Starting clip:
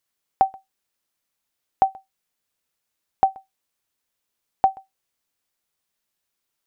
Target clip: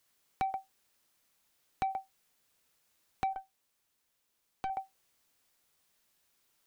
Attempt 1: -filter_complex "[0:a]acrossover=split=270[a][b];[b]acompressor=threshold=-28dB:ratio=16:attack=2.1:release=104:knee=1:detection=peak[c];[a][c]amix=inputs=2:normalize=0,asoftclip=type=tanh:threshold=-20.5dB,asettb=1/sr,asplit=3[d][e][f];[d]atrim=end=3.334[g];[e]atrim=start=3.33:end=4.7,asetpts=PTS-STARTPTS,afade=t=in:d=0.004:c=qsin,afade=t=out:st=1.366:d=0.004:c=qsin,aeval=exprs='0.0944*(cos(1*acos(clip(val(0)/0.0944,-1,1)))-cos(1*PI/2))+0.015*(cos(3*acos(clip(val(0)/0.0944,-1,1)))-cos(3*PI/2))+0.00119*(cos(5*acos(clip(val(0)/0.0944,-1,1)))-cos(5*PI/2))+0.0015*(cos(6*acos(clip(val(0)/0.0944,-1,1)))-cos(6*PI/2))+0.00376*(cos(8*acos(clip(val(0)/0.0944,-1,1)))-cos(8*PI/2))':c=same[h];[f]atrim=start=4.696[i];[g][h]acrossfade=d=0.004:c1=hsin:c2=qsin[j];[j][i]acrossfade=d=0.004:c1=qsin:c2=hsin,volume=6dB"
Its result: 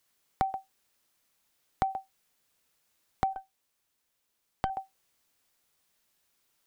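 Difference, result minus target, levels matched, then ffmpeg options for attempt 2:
soft clip: distortion -9 dB
-filter_complex "[0:a]acrossover=split=270[a][b];[b]acompressor=threshold=-28dB:ratio=16:attack=2.1:release=104:knee=1:detection=peak[c];[a][c]amix=inputs=2:normalize=0,asoftclip=type=tanh:threshold=-32.5dB,asettb=1/sr,asplit=3[d][e][f];[d]atrim=end=3.334[g];[e]atrim=start=3.33:end=4.7,asetpts=PTS-STARTPTS,afade=t=in:d=0.004:c=qsin,afade=t=out:st=1.366:d=0.004:c=qsin,aeval=exprs='0.0944*(cos(1*acos(clip(val(0)/0.0944,-1,1)))-cos(1*PI/2))+0.015*(cos(3*acos(clip(val(0)/0.0944,-1,1)))-cos(3*PI/2))+0.00119*(cos(5*acos(clip(val(0)/0.0944,-1,1)))-cos(5*PI/2))+0.0015*(cos(6*acos(clip(val(0)/0.0944,-1,1)))-cos(6*PI/2))+0.00376*(cos(8*acos(clip(val(0)/0.0944,-1,1)))-cos(8*PI/2))':c=same[h];[f]atrim=start=4.696[i];[g][h]acrossfade=d=0.004:c1=hsin:c2=qsin[j];[j][i]acrossfade=d=0.004:c1=qsin:c2=hsin,volume=6dB"

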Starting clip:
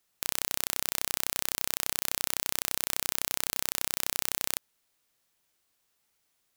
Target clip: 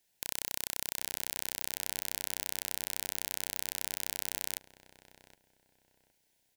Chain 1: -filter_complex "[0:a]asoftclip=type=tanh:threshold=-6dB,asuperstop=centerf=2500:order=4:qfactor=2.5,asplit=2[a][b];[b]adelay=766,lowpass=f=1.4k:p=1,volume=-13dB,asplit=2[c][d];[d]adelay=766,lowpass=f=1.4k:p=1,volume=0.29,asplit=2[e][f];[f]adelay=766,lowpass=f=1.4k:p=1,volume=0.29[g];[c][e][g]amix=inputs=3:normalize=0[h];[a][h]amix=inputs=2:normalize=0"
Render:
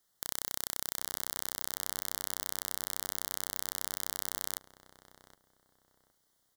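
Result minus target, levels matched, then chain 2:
1000 Hz band +3.5 dB
-filter_complex "[0:a]asoftclip=type=tanh:threshold=-6dB,asuperstop=centerf=1200:order=4:qfactor=2.5,asplit=2[a][b];[b]adelay=766,lowpass=f=1.4k:p=1,volume=-13dB,asplit=2[c][d];[d]adelay=766,lowpass=f=1.4k:p=1,volume=0.29,asplit=2[e][f];[f]adelay=766,lowpass=f=1.4k:p=1,volume=0.29[g];[c][e][g]amix=inputs=3:normalize=0[h];[a][h]amix=inputs=2:normalize=0"

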